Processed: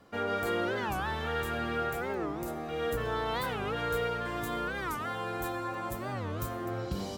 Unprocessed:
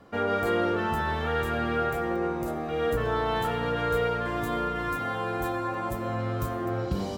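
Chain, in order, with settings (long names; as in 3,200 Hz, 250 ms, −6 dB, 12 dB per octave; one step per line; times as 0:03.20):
high-shelf EQ 2,700 Hz +7.5 dB
wow of a warped record 45 rpm, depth 250 cents
level −6 dB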